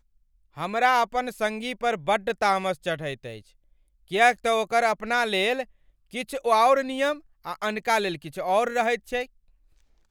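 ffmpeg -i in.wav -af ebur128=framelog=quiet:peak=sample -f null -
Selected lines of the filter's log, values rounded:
Integrated loudness:
  I:         -24.7 LUFS
  Threshold: -35.4 LUFS
Loudness range:
  LRA:         3.8 LU
  Threshold: -45.3 LUFS
  LRA low:   -27.3 LUFS
  LRA high:  -23.5 LUFS
Sample peak:
  Peak:       -6.3 dBFS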